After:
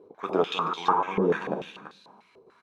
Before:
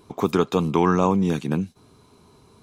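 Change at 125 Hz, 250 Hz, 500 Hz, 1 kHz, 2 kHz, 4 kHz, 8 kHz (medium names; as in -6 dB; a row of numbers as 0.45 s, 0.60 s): -14.0 dB, -11.0 dB, -4.0 dB, -0.5 dB, -1.0 dB, +1.5 dB, under -10 dB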